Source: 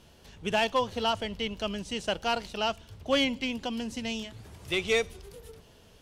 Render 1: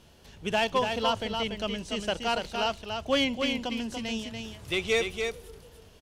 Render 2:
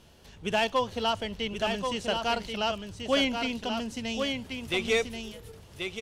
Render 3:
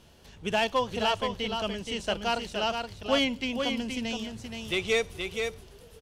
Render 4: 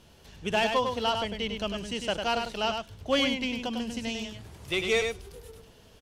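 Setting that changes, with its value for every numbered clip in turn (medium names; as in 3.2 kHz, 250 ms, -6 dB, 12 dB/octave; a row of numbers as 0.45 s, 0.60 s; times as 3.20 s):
delay, time: 288 ms, 1083 ms, 473 ms, 100 ms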